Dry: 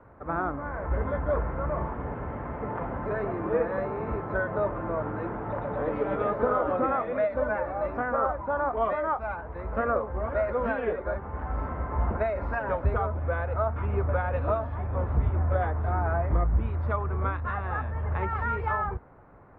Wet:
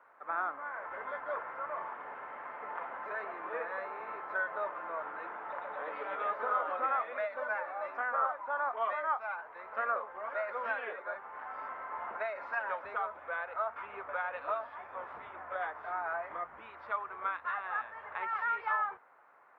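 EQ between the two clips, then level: HPF 1100 Hz 12 dB/oct; 0.0 dB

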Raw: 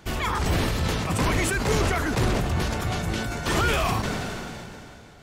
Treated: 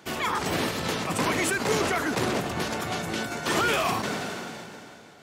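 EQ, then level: HPF 200 Hz 12 dB/oct; 0.0 dB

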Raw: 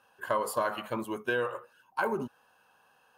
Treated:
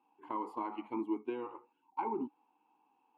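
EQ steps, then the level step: bell 440 Hz +9.5 dB 2.7 oct; dynamic EQ 1500 Hz, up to +4 dB, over -37 dBFS, Q 1.6; vowel filter u; 0.0 dB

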